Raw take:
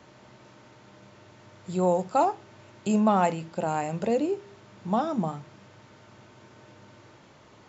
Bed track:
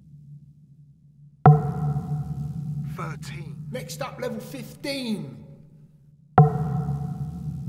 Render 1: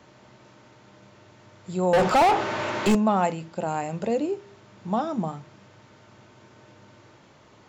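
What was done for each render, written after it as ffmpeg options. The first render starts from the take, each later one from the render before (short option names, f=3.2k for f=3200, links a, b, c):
-filter_complex "[0:a]asettb=1/sr,asplit=3[a][b][c];[a]atrim=end=1.934[d];[b]atrim=start=1.93:end=2.95,asetpts=PTS-STARTPTS,afade=t=in:d=0.004:c=qsin,afade=t=out:st=1.016:d=0.004:c=qsin,asplit=2[e][f];[f]highpass=f=720:p=1,volume=36dB,asoftclip=type=tanh:threshold=-11dB[g];[e][g]amix=inputs=2:normalize=0,lowpass=f=1.9k:p=1,volume=-6dB[h];[c]atrim=start=2.946[i];[d][h]acrossfade=d=0.004:c1=hsin:c2=qsin[j];[j][i]acrossfade=d=0.004:c1=qsin:c2=hsin"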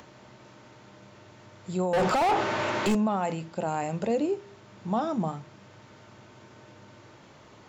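-af "alimiter=limit=-19dB:level=0:latency=1:release=23,acompressor=mode=upward:threshold=-47dB:ratio=2.5"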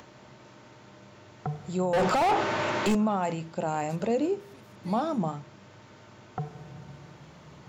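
-filter_complex "[1:a]volume=-20dB[a];[0:a][a]amix=inputs=2:normalize=0"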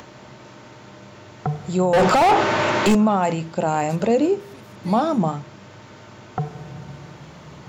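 -af "volume=8.5dB"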